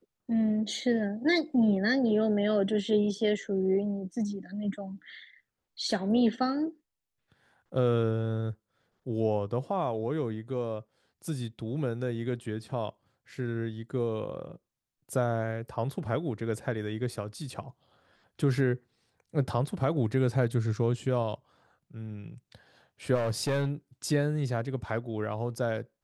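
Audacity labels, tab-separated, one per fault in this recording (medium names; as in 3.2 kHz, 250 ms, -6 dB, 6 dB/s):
23.140000	23.700000	clipped -24 dBFS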